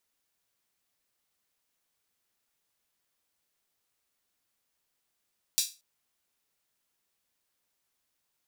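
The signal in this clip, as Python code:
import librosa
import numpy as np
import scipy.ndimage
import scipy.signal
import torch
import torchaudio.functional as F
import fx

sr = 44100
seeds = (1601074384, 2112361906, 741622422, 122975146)

y = fx.drum_hat_open(sr, length_s=0.23, from_hz=4400.0, decay_s=0.28)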